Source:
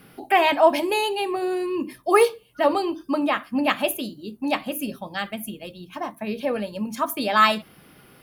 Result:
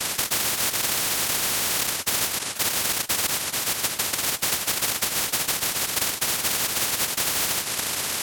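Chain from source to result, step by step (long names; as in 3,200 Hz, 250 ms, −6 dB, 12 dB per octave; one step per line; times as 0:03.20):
downward compressor 3 to 1, threshold −29 dBFS, peak gain reduction 13.5 dB
0:03.26–0:04.13: resonant band-pass 3,100 Hz, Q 0.69
cochlear-implant simulation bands 1
every bin compressed towards the loudest bin 10 to 1
level +3.5 dB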